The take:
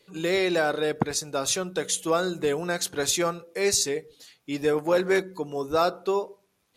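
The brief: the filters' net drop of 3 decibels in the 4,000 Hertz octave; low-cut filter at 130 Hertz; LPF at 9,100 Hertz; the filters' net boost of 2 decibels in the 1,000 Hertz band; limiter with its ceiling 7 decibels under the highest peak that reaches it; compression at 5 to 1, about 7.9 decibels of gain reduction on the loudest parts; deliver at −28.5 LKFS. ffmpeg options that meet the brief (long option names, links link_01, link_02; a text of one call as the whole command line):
ffmpeg -i in.wav -af "highpass=130,lowpass=9100,equalizer=frequency=1000:width_type=o:gain=3,equalizer=frequency=4000:width_type=o:gain=-3.5,acompressor=threshold=-28dB:ratio=5,volume=6dB,alimiter=limit=-17.5dB:level=0:latency=1" out.wav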